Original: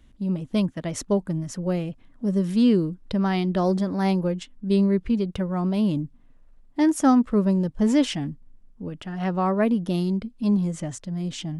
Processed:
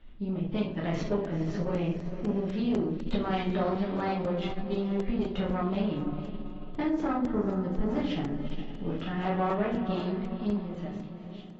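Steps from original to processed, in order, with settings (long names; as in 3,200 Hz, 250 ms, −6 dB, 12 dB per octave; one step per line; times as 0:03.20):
fade-out on the ending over 2.46 s
downward compressor 10 to 1, threshold −27 dBFS, peak gain reduction 14.5 dB
low-pass filter 3,700 Hz 24 dB per octave
parametric band 110 Hz −3.5 dB 2.8 octaves
feedback delay with all-pass diffusion 462 ms, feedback 46%, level −11 dB
rectangular room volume 61 cubic metres, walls mixed, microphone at 1.2 metres
0:06.88–0:09.06: dynamic equaliser 2,800 Hz, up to −5 dB, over −48 dBFS, Q 1.3
tube saturation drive 19 dB, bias 0.55
regular buffer underruns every 0.25 s, samples 128, zero, from 0:00.75
AAC 24 kbit/s 22,050 Hz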